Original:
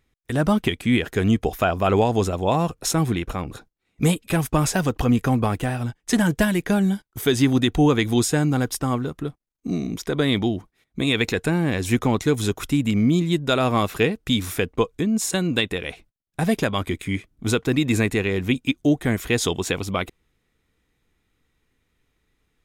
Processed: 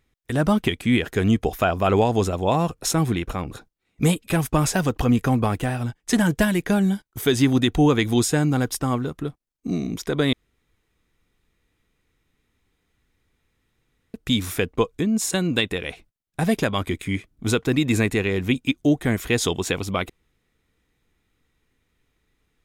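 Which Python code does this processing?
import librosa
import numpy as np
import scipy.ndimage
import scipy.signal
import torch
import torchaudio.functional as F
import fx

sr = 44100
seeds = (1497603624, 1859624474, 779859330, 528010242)

y = fx.edit(x, sr, fx.room_tone_fill(start_s=10.33, length_s=3.81), tone=tone)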